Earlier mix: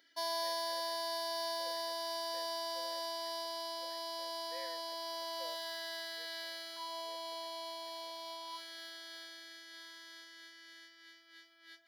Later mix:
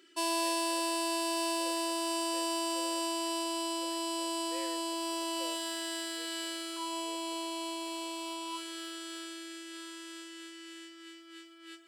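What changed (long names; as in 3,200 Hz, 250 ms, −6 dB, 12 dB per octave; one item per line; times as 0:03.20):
background: send +8.0 dB
master: remove phaser with its sweep stopped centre 1,800 Hz, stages 8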